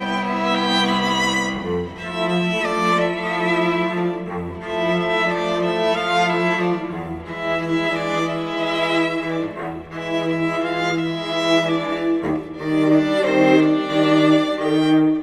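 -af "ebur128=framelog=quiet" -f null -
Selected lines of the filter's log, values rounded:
Integrated loudness:
  I:         -19.7 LUFS
  Threshold: -29.7 LUFS
Loudness range:
  LRA:         4.3 LU
  Threshold: -40.2 LUFS
  LRA low:   -21.9 LUFS
  LRA high:  -17.6 LUFS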